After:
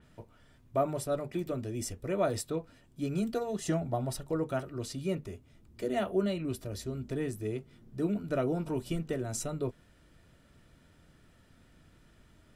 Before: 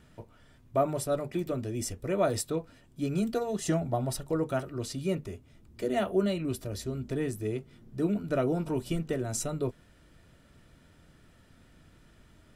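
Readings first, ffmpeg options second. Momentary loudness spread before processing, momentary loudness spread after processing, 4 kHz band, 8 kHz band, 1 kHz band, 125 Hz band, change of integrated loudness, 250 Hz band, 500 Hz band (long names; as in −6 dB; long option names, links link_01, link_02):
8 LU, 8 LU, −3.0 dB, −3.5 dB, −2.5 dB, −2.5 dB, −2.5 dB, −2.5 dB, −2.5 dB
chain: -af "adynamicequalizer=threshold=0.00398:dfrequency=4700:dqfactor=0.7:tfrequency=4700:tqfactor=0.7:attack=5:release=100:ratio=0.375:range=2:mode=cutabove:tftype=highshelf,volume=-2.5dB"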